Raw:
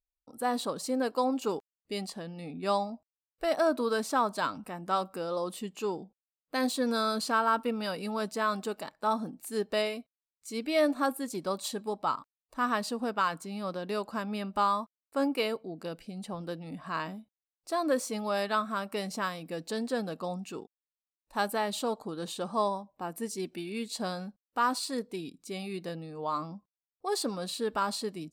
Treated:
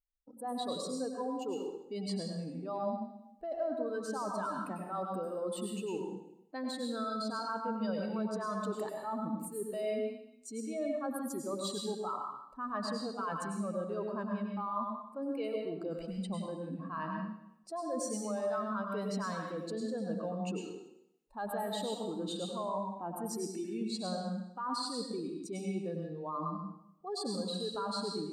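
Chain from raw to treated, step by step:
expanding power law on the bin magnitudes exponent 1.8
reversed playback
downward compressor, threshold −36 dBFS, peak gain reduction 13.5 dB
reversed playback
dense smooth reverb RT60 0.77 s, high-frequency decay 1×, pre-delay 85 ms, DRR 0.5 dB

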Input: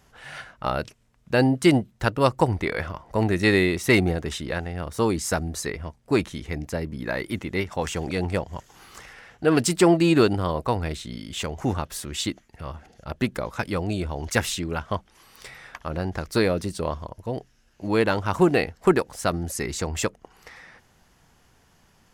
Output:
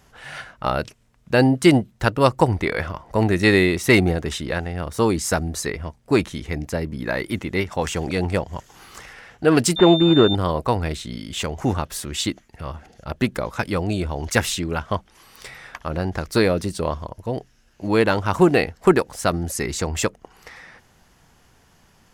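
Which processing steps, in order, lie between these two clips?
0:09.76–0:10.35: switching amplifier with a slow clock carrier 3,600 Hz
level +3.5 dB

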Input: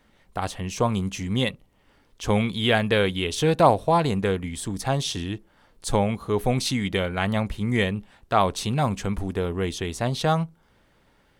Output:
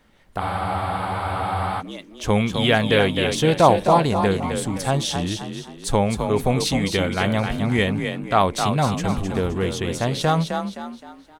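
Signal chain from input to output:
echo with shifted repeats 260 ms, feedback 39%, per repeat +36 Hz, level −6.5 dB
frozen spectrum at 0:00.42, 1.39 s
level +2.5 dB

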